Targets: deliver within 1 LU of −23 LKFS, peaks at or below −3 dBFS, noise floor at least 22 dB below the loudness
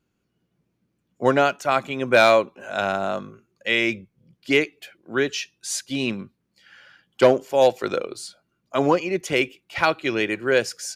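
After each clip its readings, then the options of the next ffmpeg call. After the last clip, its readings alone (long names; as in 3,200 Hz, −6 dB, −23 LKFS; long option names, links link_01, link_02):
integrated loudness −22.0 LKFS; sample peak −3.5 dBFS; target loudness −23.0 LKFS
→ -af "volume=-1dB"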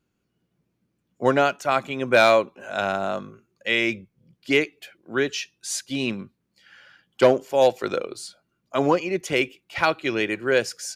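integrated loudness −23.0 LKFS; sample peak −4.5 dBFS; background noise floor −75 dBFS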